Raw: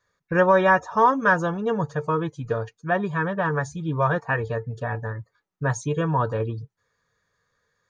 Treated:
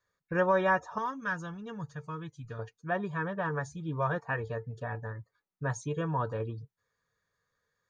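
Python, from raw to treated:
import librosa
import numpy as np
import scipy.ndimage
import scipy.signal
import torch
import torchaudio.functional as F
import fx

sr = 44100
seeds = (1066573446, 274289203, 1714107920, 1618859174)

y = fx.peak_eq(x, sr, hz=550.0, db=-13.0, octaves=2.2, at=(0.98, 2.59))
y = y * 10.0 ** (-8.5 / 20.0)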